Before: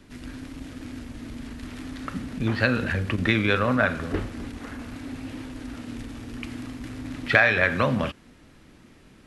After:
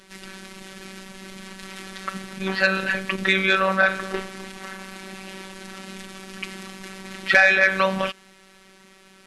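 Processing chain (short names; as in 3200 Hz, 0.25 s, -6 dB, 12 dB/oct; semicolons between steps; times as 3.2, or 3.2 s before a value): high shelf 5900 Hz +8.5 dB; robotiser 191 Hz; overdrive pedal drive 13 dB, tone 5900 Hz, clips at -1.5 dBFS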